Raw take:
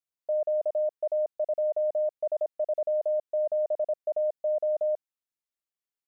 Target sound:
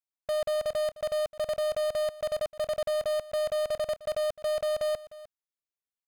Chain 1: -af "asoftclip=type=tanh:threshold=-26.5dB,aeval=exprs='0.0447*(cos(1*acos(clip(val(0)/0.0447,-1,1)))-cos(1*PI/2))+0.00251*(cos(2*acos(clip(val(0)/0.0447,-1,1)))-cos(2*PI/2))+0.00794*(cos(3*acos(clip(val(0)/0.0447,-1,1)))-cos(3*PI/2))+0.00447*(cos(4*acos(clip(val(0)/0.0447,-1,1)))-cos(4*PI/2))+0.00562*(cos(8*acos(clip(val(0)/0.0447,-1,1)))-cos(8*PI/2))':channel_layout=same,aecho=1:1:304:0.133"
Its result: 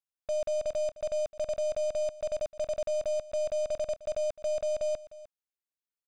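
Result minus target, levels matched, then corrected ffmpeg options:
soft clipping: distortion +16 dB
-af "asoftclip=type=tanh:threshold=-17dB,aeval=exprs='0.0447*(cos(1*acos(clip(val(0)/0.0447,-1,1)))-cos(1*PI/2))+0.00251*(cos(2*acos(clip(val(0)/0.0447,-1,1)))-cos(2*PI/2))+0.00794*(cos(3*acos(clip(val(0)/0.0447,-1,1)))-cos(3*PI/2))+0.00447*(cos(4*acos(clip(val(0)/0.0447,-1,1)))-cos(4*PI/2))+0.00562*(cos(8*acos(clip(val(0)/0.0447,-1,1)))-cos(8*PI/2))':channel_layout=same,aecho=1:1:304:0.133"

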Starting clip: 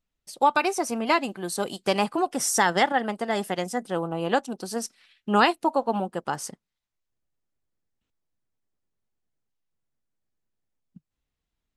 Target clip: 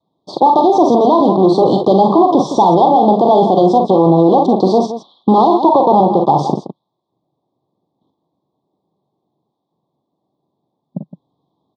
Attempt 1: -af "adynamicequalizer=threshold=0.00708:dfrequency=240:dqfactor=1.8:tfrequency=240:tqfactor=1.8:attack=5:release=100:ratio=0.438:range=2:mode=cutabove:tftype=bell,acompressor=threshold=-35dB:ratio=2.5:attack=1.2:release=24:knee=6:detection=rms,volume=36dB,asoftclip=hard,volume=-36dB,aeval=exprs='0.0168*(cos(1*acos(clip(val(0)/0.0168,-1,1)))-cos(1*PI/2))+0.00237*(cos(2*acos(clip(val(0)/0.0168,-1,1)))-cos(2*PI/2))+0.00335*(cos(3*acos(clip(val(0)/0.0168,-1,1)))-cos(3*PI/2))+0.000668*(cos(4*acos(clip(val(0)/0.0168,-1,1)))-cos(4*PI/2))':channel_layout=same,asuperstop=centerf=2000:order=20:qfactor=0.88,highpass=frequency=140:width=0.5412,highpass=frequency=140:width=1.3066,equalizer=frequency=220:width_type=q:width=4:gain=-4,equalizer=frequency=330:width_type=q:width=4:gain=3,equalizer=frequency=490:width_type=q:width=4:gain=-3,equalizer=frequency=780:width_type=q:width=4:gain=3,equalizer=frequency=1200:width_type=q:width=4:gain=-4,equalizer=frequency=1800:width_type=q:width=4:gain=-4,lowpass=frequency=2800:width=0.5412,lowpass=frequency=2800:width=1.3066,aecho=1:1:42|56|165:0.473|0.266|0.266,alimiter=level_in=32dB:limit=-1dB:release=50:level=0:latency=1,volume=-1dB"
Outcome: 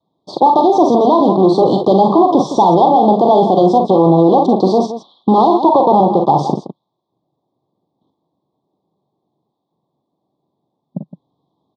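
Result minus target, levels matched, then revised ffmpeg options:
gain into a clipping stage and back: distortion +16 dB
-af "adynamicequalizer=threshold=0.00708:dfrequency=240:dqfactor=1.8:tfrequency=240:tqfactor=1.8:attack=5:release=100:ratio=0.438:range=2:mode=cutabove:tftype=bell,acompressor=threshold=-35dB:ratio=2.5:attack=1.2:release=24:knee=6:detection=rms,volume=26.5dB,asoftclip=hard,volume=-26.5dB,aeval=exprs='0.0168*(cos(1*acos(clip(val(0)/0.0168,-1,1)))-cos(1*PI/2))+0.00237*(cos(2*acos(clip(val(0)/0.0168,-1,1)))-cos(2*PI/2))+0.00335*(cos(3*acos(clip(val(0)/0.0168,-1,1)))-cos(3*PI/2))+0.000668*(cos(4*acos(clip(val(0)/0.0168,-1,1)))-cos(4*PI/2))':channel_layout=same,asuperstop=centerf=2000:order=20:qfactor=0.88,highpass=frequency=140:width=0.5412,highpass=frequency=140:width=1.3066,equalizer=frequency=220:width_type=q:width=4:gain=-4,equalizer=frequency=330:width_type=q:width=4:gain=3,equalizer=frequency=490:width_type=q:width=4:gain=-3,equalizer=frequency=780:width_type=q:width=4:gain=3,equalizer=frequency=1200:width_type=q:width=4:gain=-4,equalizer=frequency=1800:width_type=q:width=4:gain=-4,lowpass=frequency=2800:width=0.5412,lowpass=frequency=2800:width=1.3066,aecho=1:1:42|56|165:0.473|0.266|0.266,alimiter=level_in=32dB:limit=-1dB:release=50:level=0:latency=1,volume=-1dB"

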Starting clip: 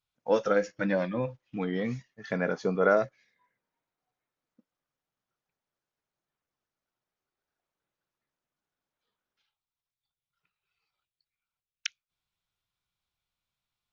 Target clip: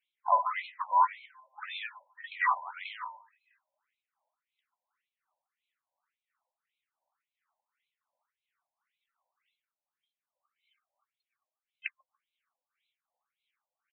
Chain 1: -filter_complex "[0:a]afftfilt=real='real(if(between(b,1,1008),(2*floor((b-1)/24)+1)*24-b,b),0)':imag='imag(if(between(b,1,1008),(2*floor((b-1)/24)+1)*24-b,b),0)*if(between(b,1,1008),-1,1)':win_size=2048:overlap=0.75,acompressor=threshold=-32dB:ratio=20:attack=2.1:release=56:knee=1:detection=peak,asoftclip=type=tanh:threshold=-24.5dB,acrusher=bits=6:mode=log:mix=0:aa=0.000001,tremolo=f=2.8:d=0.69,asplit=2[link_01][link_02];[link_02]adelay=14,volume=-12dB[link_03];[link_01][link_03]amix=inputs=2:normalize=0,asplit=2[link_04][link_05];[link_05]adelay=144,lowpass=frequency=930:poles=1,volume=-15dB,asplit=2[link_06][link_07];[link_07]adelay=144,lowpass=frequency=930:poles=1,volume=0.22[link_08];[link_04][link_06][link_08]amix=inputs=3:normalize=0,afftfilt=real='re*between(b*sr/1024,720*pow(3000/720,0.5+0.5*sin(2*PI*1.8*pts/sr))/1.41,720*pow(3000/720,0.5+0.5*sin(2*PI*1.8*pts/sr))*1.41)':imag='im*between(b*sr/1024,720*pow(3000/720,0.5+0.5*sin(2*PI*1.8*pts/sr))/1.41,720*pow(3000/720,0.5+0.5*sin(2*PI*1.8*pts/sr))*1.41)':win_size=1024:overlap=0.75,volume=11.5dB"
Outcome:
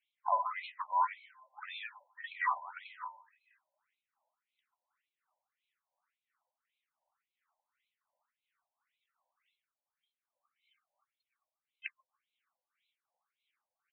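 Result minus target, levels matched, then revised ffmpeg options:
downward compressor: peak gain reduction +7.5 dB
-filter_complex "[0:a]afftfilt=real='real(if(between(b,1,1008),(2*floor((b-1)/24)+1)*24-b,b),0)':imag='imag(if(between(b,1,1008),(2*floor((b-1)/24)+1)*24-b,b),0)*if(between(b,1,1008),-1,1)':win_size=2048:overlap=0.75,acompressor=threshold=-24dB:ratio=20:attack=2.1:release=56:knee=1:detection=peak,asoftclip=type=tanh:threshold=-24.5dB,acrusher=bits=6:mode=log:mix=0:aa=0.000001,tremolo=f=2.8:d=0.69,asplit=2[link_01][link_02];[link_02]adelay=14,volume=-12dB[link_03];[link_01][link_03]amix=inputs=2:normalize=0,asplit=2[link_04][link_05];[link_05]adelay=144,lowpass=frequency=930:poles=1,volume=-15dB,asplit=2[link_06][link_07];[link_07]adelay=144,lowpass=frequency=930:poles=1,volume=0.22[link_08];[link_04][link_06][link_08]amix=inputs=3:normalize=0,afftfilt=real='re*between(b*sr/1024,720*pow(3000/720,0.5+0.5*sin(2*PI*1.8*pts/sr))/1.41,720*pow(3000/720,0.5+0.5*sin(2*PI*1.8*pts/sr))*1.41)':imag='im*between(b*sr/1024,720*pow(3000/720,0.5+0.5*sin(2*PI*1.8*pts/sr))/1.41,720*pow(3000/720,0.5+0.5*sin(2*PI*1.8*pts/sr))*1.41)':win_size=1024:overlap=0.75,volume=11.5dB"

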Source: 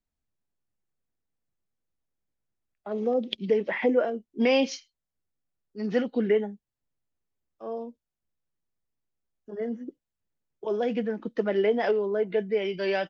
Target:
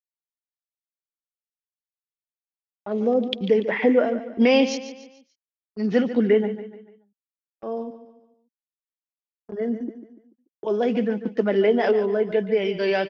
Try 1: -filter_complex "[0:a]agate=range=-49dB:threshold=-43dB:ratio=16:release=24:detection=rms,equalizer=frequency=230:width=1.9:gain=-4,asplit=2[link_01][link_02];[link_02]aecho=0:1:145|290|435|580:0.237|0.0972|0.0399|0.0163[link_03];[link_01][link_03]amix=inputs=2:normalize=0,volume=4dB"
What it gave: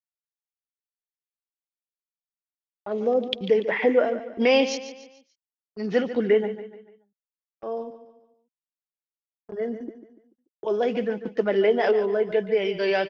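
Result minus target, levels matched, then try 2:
250 Hz band −4.0 dB
-filter_complex "[0:a]agate=range=-49dB:threshold=-43dB:ratio=16:release=24:detection=rms,equalizer=frequency=230:width=1.9:gain=3,asplit=2[link_01][link_02];[link_02]aecho=0:1:145|290|435|580:0.237|0.0972|0.0399|0.0163[link_03];[link_01][link_03]amix=inputs=2:normalize=0,volume=4dB"

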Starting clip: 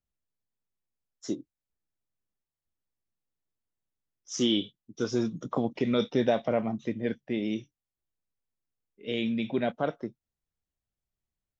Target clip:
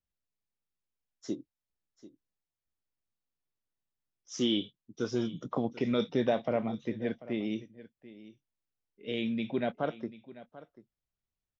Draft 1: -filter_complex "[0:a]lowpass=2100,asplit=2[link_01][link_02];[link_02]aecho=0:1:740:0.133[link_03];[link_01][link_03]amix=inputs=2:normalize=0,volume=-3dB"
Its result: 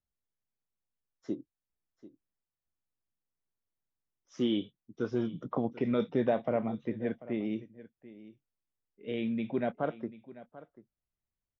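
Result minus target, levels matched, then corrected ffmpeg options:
8,000 Hz band −15.5 dB
-filter_complex "[0:a]lowpass=5700,asplit=2[link_01][link_02];[link_02]aecho=0:1:740:0.133[link_03];[link_01][link_03]amix=inputs=2:normalize=0,volume=-3dB"

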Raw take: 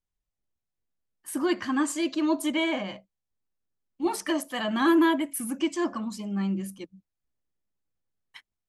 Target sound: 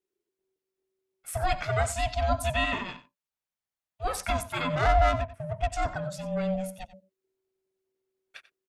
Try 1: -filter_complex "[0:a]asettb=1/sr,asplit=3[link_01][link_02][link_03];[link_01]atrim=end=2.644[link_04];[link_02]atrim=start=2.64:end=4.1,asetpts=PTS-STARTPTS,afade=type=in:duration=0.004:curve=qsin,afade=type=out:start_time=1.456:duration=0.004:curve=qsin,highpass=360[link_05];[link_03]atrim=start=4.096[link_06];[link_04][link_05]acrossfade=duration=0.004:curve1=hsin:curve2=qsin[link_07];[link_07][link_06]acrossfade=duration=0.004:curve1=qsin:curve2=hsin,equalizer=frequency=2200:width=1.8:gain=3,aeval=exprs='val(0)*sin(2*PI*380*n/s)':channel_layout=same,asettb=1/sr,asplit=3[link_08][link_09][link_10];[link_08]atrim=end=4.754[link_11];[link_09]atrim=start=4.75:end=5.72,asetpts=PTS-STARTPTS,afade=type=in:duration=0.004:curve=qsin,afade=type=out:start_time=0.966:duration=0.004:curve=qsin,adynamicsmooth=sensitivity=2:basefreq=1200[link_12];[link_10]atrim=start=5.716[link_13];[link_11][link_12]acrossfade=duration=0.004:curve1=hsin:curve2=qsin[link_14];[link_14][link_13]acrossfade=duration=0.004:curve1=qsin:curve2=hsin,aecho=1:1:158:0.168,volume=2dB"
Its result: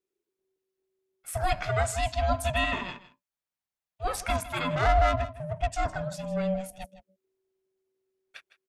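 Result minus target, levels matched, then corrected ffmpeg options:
echo 67 ms late
-filter_complex "[0:a]asettb=1/sr,asplit=3[link_01][link_02][link_03];[link_01]atrim=end=2.644[link_04];[link_02]atrim=start=2.64:end=4.1,asetpts=PTS-STARTPTS,afade=type=in:duration=0.004:curve=qsin,afade=type=out:start_time=1.456:duration=0.004:curve=qsin,highpass=360[link_05];[link_03]atrim=start=4.096[link_06];[link_04][link_05]acrossfade=duration=0.004:curve1=hsin:curve2=qsin[link_07];[link_07][link_06]acrossfade=duration=0.004:curve1=qsin:curve2=hsin,equalizer=frequency=2200:width=1.8:gain=3,aeval=exprs='val(0)*sin(2*PI*380*n/s)':channel_layout=same,asettb=1/sr,asplit=3[link_08][link_09][link_10];[link_08]atrim=end=4.754[link_11];[link_09]atrim=start=4.75:end=5.72,asetpts=PTS-STARTPTS,afade=type=in:duration=0.004:curve=qsin,afade=type=out:start_time=0.966:duration=0.004:curve=qsin,adynamicsmooth=sensitivity=2:basefreq=1200[link_12];[link_10]atrim=start=5.716[link_13];[link_11][link_12]acrossfade=duration=0.004:curve1=hsin:curve2=qsin[link_14];[link_14][link_13]acrossfade=duration=0.004:curve1=qsin:curve2=hsin,aecho=1:1:91:0.168,volume=2dB"

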